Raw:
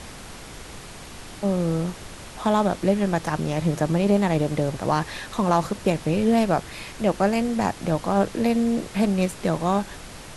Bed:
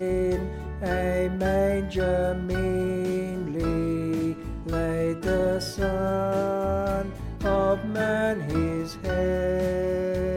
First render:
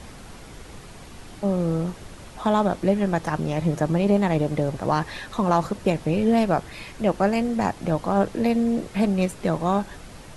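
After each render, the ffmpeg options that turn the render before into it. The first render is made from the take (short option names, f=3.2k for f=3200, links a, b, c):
-af "afftdn=nr=6:nf=-40"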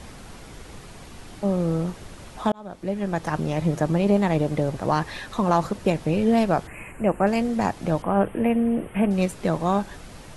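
-filter_complex "[0:a]asettb=1/sr,asplit=3[a][b][c];[a]atrim=end=6.674[d];[b]atrim=start=6.67:end=7.27,asetpts=PTS-STARTPTS,afade=t=in:d=0.004:c=qsin,afade=t=out:st=0.596:d=0.004:c=qsin,asuperstop=centerf=4600:order=12:qfactor=1[e];[c]atrim=start=7.266[f];[d][e]acrossfade=d=0.004:c1=hsin:c2=qsin[g];[g][f]acrossfade=d=0.004:c1=qsin:c2=hsin,asettb=1/sr,asplit=3[h][i][j];[h]atrim=end=8.024[k];[i]atrim=start=8.02:end=9.11,asetpts=PTS-STARTPTS,afade=t=in:d=0.004:c=qsin,afade=t=out:st=1.086:d=0.004:c=qsin,asuperstop=centerf=5300:order=12:qfactor=1[l];[j]atrim=start=9.106[m];[k][l]acrossfade=d=0.004:c1=hsin:c2=qsin[n];[n][m]acrossfade=d=0.004:c1=qsin:c2=hsin,asplit=2[o][p];[o]atrim=end=2.52,asetpts=PTS-STARTPTS,afade=t=out:st=2.516:d=0.004:c=hsin[q];[p]atrim=start=2.52,asetpts=PTS-STARTPTS,afade=t=in:d=0.84[r];[q][r]concat=n=2:v=0:a=1"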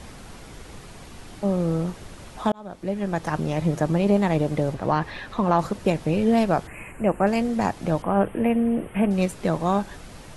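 -filter_complex "[0:a]asettb=1/sr,asplit=3[a][b][c];[a]atrim=end=4.744[d];[b]atrim=start=4.74:end=5.59,asetpts=PTS-STARTPTS,afade=t=in:d=0.004:c=qsin,afade=t=out:st=0.846:d=0.004:c=qsin,acrossover=split=4000[e][f];[f]acompressor=threshold=-57dB:ratio=4:attack=1:release=60[g];[e][g]amix=inputs=2:normalize=0[h];[c]atrim=start=5.586[i];[d][h]acrossfade=d=0.004:c1=hsin:c2=qsin[j];[j][i]acrossfade=d=0.004:c1=qsin:c2=hsin"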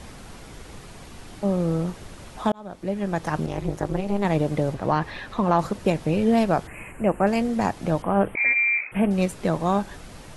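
-filter_complex "[0:a]asettb=1/sr,asplit=3[a][b][c];[a]atrim=end=3.464[d];[b]atrim=start=3.46:end=4.25,asetpts=PTS-STARTPTS,afade=t=in:d=0.004:c=qsin,afade=t=out:st=0.786:d=0.004:c=qsin,tremolo=f=200:d=1[e];[c]atrim=start=4.246[f];[d][e]acrossfade=d=0.004:c1=hsin:c2=qsin[g];[g][f]acrossfade=d=0.004:c1=qsin:c2=hsin,asettb=1/sr,asplit=3[h][i][j];[h]atrim=end=8.354[k];[i]atrim=start=8.35:end=8.92,asetpts=PTS-STARTPTS,afade=t=in:d=0.004:c=qsin,afade=t=out:st=0.566:d=0.004:c=qsin,lowpass=f=2.2k:t=q:w=0.5098,lowpass=f=2.2k:t=q:w=0.6013,lowpass=f=2.2k:t=q:w=0.9,lowpass=f=2.2k:t=q:w=2.563,afreqshift=-2600[l];[j]atrim=start=8.916[m];[k][l]acrossfade=d=0.004:c1=hsin:c2=qsin[n];[n][m]acrossfade=d=0.004:c1=qsin:c2=hsin"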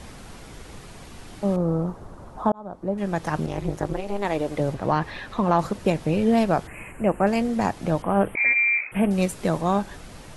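-filter_complex "[0:a]asettb=1/sr,asplit=3[a][b][c];[a]atrim=end=1.564[d];[b]atrim=start=1.56:end=2.98,asetpts=PTS-STARTPTS,afade=t=in:d=0.004:c=qsin,afade=t=out:st=1.416:d=0.004:c=qsin,highshelf=f=1.6k:t=q:w=1.5:g=-12.5[e];[c]atrim=start=2.976[f];[d][e]acrossfade=d=0.004:c1=hsin:c2=qsin[g];[g][f]acrossfade=d=0.004:c1=qsin:c2=hsin,asettb=1/sr,asplit=3[h][i][j];[h]atrim=end=3.934[k];[i]atrim=start=3.93:end=4.6,asetpts=PTS-STARTPTS,afade=t=in:d=0.004:c=qsin,afade=t=out:st=0.666:d=0.004:c=qsin,equalizer=f=160:t=o:w=1:g=-12[l];[j]atrim=start=4.596[m];[k][l]acrossfade=d=0.004:c1=hsin:c2=qsin[n];[n][m]acrossfade=d=0.004:c1=qsin:c2=hsin,asettb=1/sr,asplit=3[o][p][q];[o]atrim=end=8.094[r];[p]atrim=start=8.09:end=9.61,asetpts=PTS-STARTPTS,afade=t=in:d=0.004:c=qsin,afade=t=out:st=1.516:d=0.004:c=qsin,highshelf=f=6.2k:g=6[s];[q]atrim=start=9.606[t];[r][s]acrossfade=d=0.004:c1=hsin:c2=qsin[u];[u][t]acrossfade=d=0.004:c1=qsin:c2=hsin"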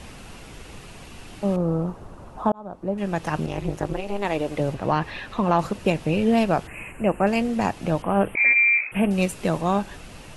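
-af "equalizer=f=2.7k:t=o:w=0.3:g=7.5"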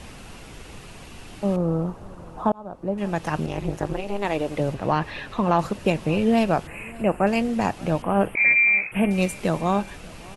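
-af "aecho=1:1:586|1172|1758:0.0708|0.0269|0.0102"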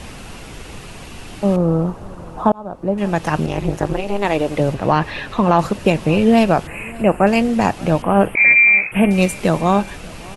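-af "volume=7dB,alimiter=limit=-2dB:level=0:latency=1"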